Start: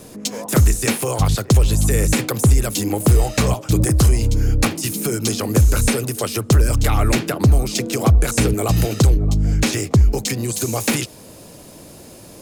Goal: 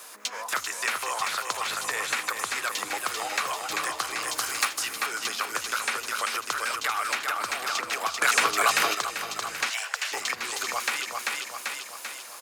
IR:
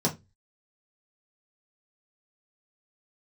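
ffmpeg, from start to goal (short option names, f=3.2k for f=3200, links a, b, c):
-filter_complex "[0:a]acrusher=bits=9:mix=0:aa=0.000001,highpass=f=1.2k:t=q:w=1.9,aecho=1:1:390|780|1170|1560|1950|2340|2730:0.531|0.287|0.155|0.0836|0.0451|0.0244|0.0132,acrossover=split=2600|5300[a][b][c];[a]acompressor=threshold=-27dB:ratio=4[d];[b]acompressor=threshold=-35dB:ratio=4[e];[c]acompressor=threshold=-41dB:ratio=4[f];[d][e][f]amix=inputs=3:normalize=0,asettb=1/sr,asplit=3[g][h][i];[g]atrim=end=4.274[j];[h]atrim=start=4.27:end=4.83,asetpts=PTS-STARTPTS,afade=t=in:d=0.004:c=qsin,afade=t=out:st=0.556:d=0.004:c=qsin,highshelf=f=5.2k:g=9.5[k];[i]atrim=start=4.826[l];[j][k]acrossfade=d=0.004:c1=hsin:c2=qsin[m];[m][l]acrossfade=d=0.004:c1=qsin:c2=hsin,asettb=1/sr,asplit=3[n][o][p];[n]atrim=end=8.214[q];[o]atrim=start=8.21:end=8.95,asetpts=PTS-STARTPTS,afade=t=in:d=0.004:c=qsin,afade=t=out:st=0.736:d=0.004:c=qsin,acontrast=80[r];[p]atrim=start=8.946[s];[q][r]acrossfade=d=0.004:c1=hsin:c2=qsin[t];[t][s]acrossfade=d=0.004:c1=qsin:c2=hsin,asplit=3[u][v][w];[u]afade=t=out:st=9.69:d=0.02[x];[v]afreqshift=340,afade=t=in:st=9.69:d=0.02,afade=t=out:st=10.11:d=0.02[y];[w]afade=t=in:st=10.11:d=0.02[z];[x][y][z]amix=inputs=3:normalize=0"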